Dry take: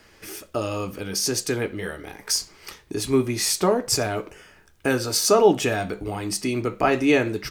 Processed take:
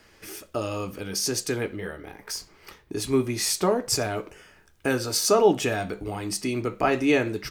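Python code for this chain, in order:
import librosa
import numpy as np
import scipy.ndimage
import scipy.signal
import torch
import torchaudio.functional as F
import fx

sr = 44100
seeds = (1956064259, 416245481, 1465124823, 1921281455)

y = fx.peak_eq(x, sr, hz=7300.0, db=-8.5, octaves=2.3, at=(1.76, 2.95))
y = F.gain(torch.from_numpy(y), -2.5).numpy()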